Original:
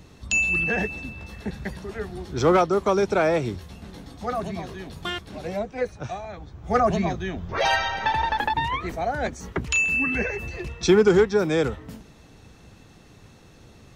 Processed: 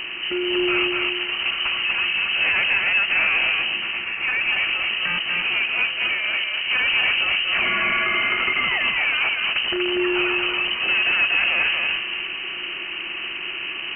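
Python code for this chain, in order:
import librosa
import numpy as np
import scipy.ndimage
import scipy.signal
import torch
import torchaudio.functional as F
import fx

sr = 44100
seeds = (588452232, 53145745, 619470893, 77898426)

y = fx.bin_compress(x, sr, power=0.6)
y = fx.highpass(y, sr, hz=210.0, slope=12, at=(3.79, 4.48))
y = 10.0 ** (-22.0 / 20.0) * np.tanh(y / 10.0 ** (-22.0 / 20.0))
y = fx.air_absorb(y, sr, metres=220.0)
y = y + 10.0 ** (-3.5 / 20.0) * np.pad(y, (int(240 * sr / 1000.0), 0))[:len(y)]
y = fx.freq_invert(y, sr, carrier_hz=3000)
y = F.gain(torch.from_numpy(y), 4.0).numpy()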